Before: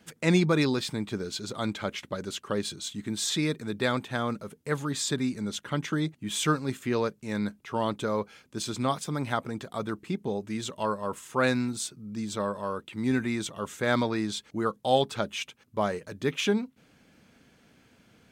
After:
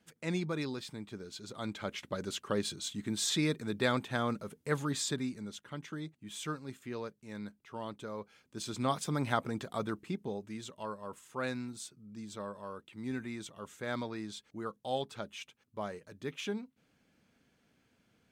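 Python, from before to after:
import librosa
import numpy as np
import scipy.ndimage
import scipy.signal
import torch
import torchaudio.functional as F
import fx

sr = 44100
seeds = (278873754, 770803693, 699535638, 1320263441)

y = fx.gain(x, sr, db=fx.line((1.28, -12.0), (2.2, -3.0), (4.91, -3.0), (5.65, -13.0), (8.17, -13.0), (9.05, -2.0), (9.71, -2.0), (10.74, -11.5)))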